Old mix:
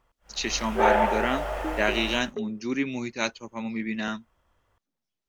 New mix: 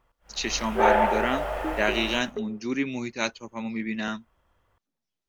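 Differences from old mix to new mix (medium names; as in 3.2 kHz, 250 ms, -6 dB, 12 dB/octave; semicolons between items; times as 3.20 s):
first sound: add peaking EQ 6.2 kHz -4.5 dB 1.2 oct; reverb: on, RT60 1.1 s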